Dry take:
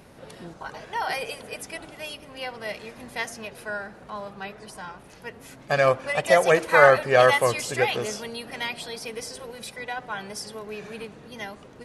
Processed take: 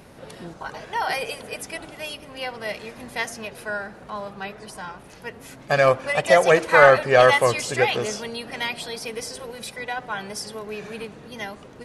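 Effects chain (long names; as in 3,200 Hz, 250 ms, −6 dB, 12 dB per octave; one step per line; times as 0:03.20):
0:06.23–0:08.57: low-pass filter 9,900 Hz 12 dB per octave
soft clipping −3 dBFS, distortion −25 dB
level +3 dB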